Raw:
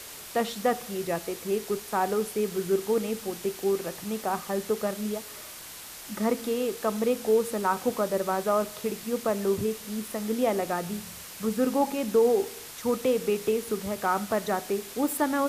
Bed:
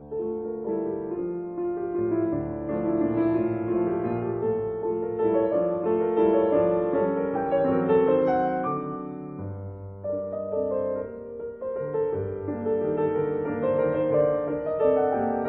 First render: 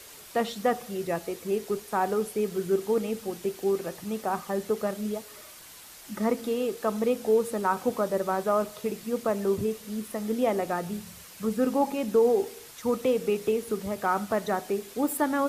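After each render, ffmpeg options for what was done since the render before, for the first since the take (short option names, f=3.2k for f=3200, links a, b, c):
-af "afftdn=nr=6:nf=-43"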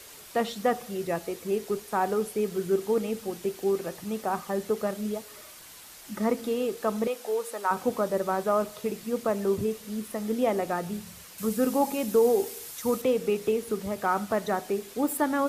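-filter_complex "[0:a]asettb=1/sr,asplit=3[a][b][c];[a]atrim=end=7.074[d];[b]atrim=start=7.07:end=7.71,asetpts=PTS-STARTPTS,afade=t=in:d=0.004:c=qsin,afade=t=out:st=0.636:d=0.004:c=qsin,highpass=590[e];[c]atrim=start=7.706[f];[d][e]acrossfade=d=0.004:c1=hsin:c2=qsin[g];[g][f]acrossfade=d=0.004:c1=qsin:c2=hsin,asettb=1/sr,asplit=3[h][i][j];[h]atrim=end=11.384[k];[i]atrim=start=11.38:end=13.02,asetpts=PTS-STARTPTS,afade=t=in:d=0.004:c=qsin,afade=t=out:st=1.636:d=0.004:c=qsin,highshelf=f=6.3k:g=10.5[l];[j]atrim=start=13.016[m];[k][l]acrossfade=d=0.004:c1=hsin:c2=qsin[n];[n][m]acrossfade=d=0.004:c1=qsin:c2=hsin"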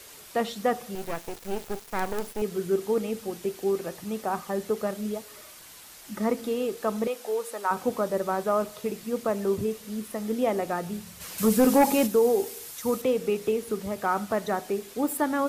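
-filter_complex "[0:a]asettb=1/sr,asplit=3[a][b][c];[a]atrim=end=0.954[d];[b]atrim=start=0.95:end=2.42,asetpts=PTS-STARTPTS,afade=t=in:d=0.004:c=qsin,afade=t=out:st=1.466:d=0.004:c=qsin,acrusher=bits=4:dc=4:mix=0:aa=0.000001[e];[c]atrim=start=2.416[f];[d][e]acrossfade=d=0.004:c1=hsin:c2=qsin[g];[g][f]acrossfade=d=0.004:c1=qsin:c2=hsin,asplit=3[h][i][j];[h]afade=t=out:st=11.2:d=0.02[k];[i]aeval=exprs='0.211*sin(PI/2*1.58*val(0)/0.211)':c=same,afade=t=in:st=11.2:d=0.02,afade=t=out:st=12.06:d=0.02[l];[j]afade=t=in:st=12.06:d=0.02[m];[k][l][m]amix=inputs=3:normalize=0"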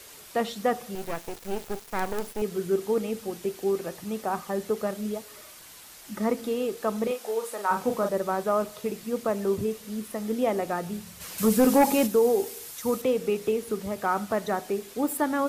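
-filter_complex "[0:a]asettb=1/sr,asplit=3[a][b][c];[a]atrim=end=7.054[d];[b]atrim=start=7.05:end=8.09,asetpts=PTS-STARTPTS,afade=t=in:d=0.004:c=qsin,afade=t=out:st=1.036:d=0.004:c=qsin,asplit=2[e][f];[f]adelay=40,volume=-5.5dB[g];[e][g]amix=inputs=2:normalize=0,atrim=end_sample=45864[h];[c]atrim=start=8.086[i];[d][h]acrossfade=d=0.004:c1=hsin:c2=qsin[j];[j][i]acrossfade=d=0.004:c1=qsin:c2=hsin"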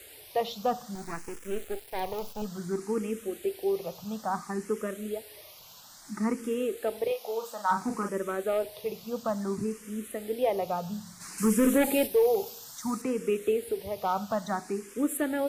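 -filter_complex "[0:a]volume=16.5dB,asoftclip=hard,volume=-16.5dB,asplit=2[a][b];[b]afreqshift=0.59[c];[a][c]amix=inputs=2:normalize=1"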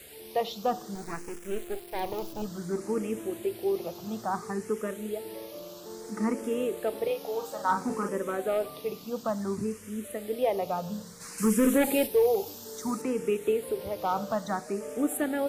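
-filter_complex "[1:a]volume=-19dB[a];[0:a][a]amix=inputs=2:normalize=0"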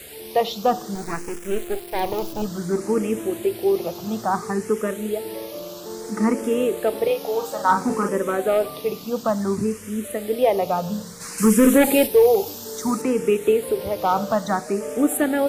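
-af "volume=8.5dB"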